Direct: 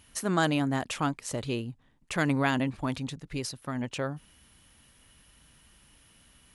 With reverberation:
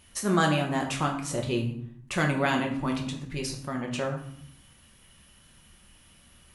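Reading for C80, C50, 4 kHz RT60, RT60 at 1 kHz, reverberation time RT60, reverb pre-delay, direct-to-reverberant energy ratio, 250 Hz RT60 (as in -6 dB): 11.0 dB, 8.0 dB, 0.45 s, 0.70 s, 0.65 s, 5 ms, 0.5 dB, 0.90 s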